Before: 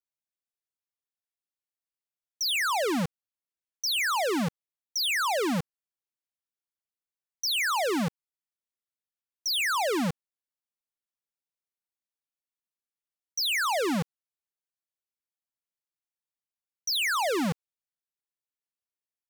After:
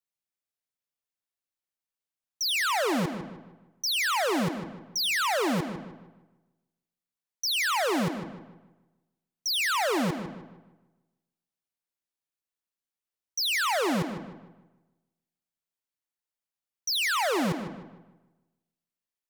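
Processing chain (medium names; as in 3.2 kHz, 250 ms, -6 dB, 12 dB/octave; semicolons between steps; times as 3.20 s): filtered feedback delay 153 ms, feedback 38%, low-pass 3.6 kHz, level -9 dB; on a send at -13 dB: reverberation RT60 1.0 s, pre-delay 65 ms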